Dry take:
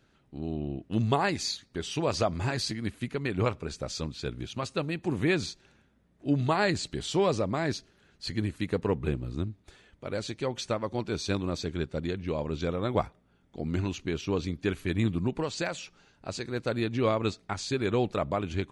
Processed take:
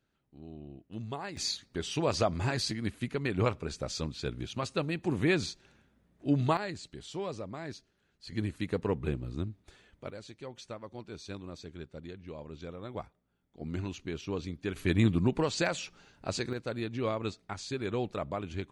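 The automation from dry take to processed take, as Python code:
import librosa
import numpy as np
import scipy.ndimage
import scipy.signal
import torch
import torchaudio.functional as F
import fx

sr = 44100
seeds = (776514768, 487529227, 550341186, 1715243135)

y = fx.gain(x, sr, db=fx.steps((0.0, -13.0), (1.37, -1.0), (6.57, -11.5), (8.32, -3.0), (10.1, -12.5), (13.61, -6.0), (14.76, 2.0), (16.53, -6.0)))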